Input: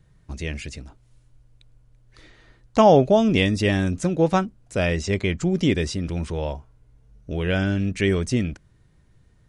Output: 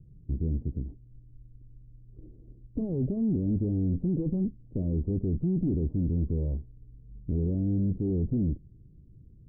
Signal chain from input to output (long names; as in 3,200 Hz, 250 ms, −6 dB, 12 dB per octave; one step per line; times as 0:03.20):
tube saturation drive 32 dB, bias 0.65
inverse Chebyshev low-pass filter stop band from 2,100 Hz, stop band 80 dB
level +8.5 dB